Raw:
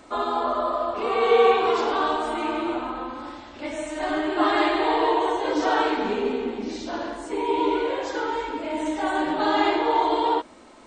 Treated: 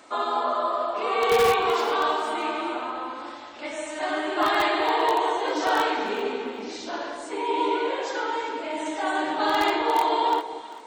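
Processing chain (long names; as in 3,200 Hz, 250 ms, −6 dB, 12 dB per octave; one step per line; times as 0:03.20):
high-pass filter 620 Hz 6 dB per octave
in parallel at −8 dB: wrap-around overflow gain 14 dB
on the sum: delay that swaps between a low-pass and a high-pass 197 ms, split 880 Hz, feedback 51%, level −9 dB
level −1.5 dB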